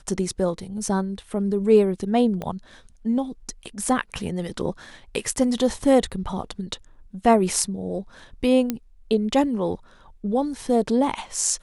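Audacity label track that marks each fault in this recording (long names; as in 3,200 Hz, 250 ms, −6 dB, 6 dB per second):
2.420000	2.420000	click −18 dBFS
8.700000	8.700000	click −10 dBFS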